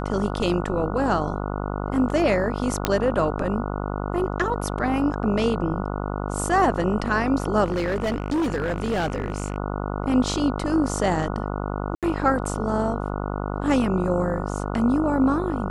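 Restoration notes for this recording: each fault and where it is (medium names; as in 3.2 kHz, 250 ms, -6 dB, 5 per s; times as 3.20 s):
buzz 50 Hz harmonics 29 -28 dBFS
2.85 s: pop -4 dBFS
7.64–9.58 s: clipped -20 dBFS
11.95–12.03 s: dropout 77 ms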